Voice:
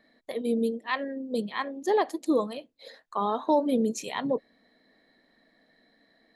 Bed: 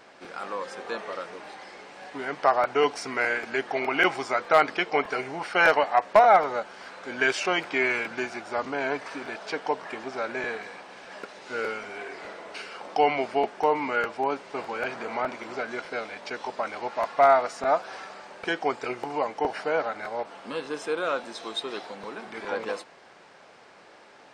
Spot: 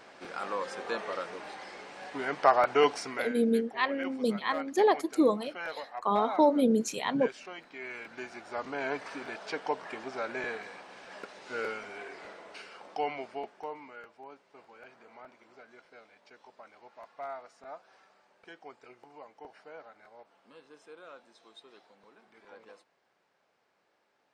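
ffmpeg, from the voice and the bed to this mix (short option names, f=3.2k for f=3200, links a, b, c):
-filter_complex "[0:a]adelay=2900,volume=0.5dB[a];[1:a]volume=13.5dB,afade=t=out:st=2.91:d=0.43:silence=0.125893,afade=t=in:st=7.78:d=1.21:silence=0.188365,afade=t=out:st=11.66:d=2.3:silence=0.133352[b];[a][b]amix=inputs=2:normalize=0"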